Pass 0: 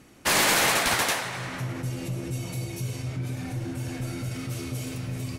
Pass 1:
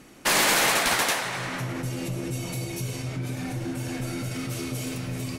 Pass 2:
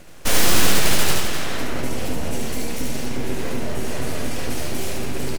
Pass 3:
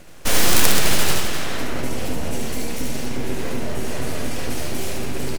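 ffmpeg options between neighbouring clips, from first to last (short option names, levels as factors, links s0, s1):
-filter_complex "[0:a]equalizer=f=88:t=o:w=0.83:g=-10,asplit=2[s0][s1];[s1]acompressor=threshold=0.0282:ratio=6,volume=0.891[s2];[s0][s2]amix=inputs=2:normalize=0,volume=0.841"
-filter_complex "[0:a]aeval=exprs='abs(val(0))':c=same,asplit=2[s0][s1];[s1]acrusher=samples=36:mix=1:aa=0.000001,volume=0.562[s2];[s0][s2]amix=inputs=2:normalize=0,aecho=1:1:72.89|259.5:0.708|0.316,volume=1.58"
-af "aeval=exprs='(mod(1.41*val(0)+1,2)-1)/1.41':c=same"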